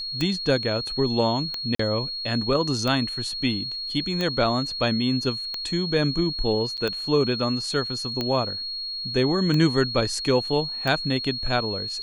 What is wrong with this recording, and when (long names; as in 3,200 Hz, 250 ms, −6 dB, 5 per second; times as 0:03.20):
scratch tick 45 rpm −13 dBFS
whistle 4,300 Hz −29 dBFS
0:01.75–0:01.79: drop-out 44 ms
0:06.77–0:06.78: drop-out 7.7 ms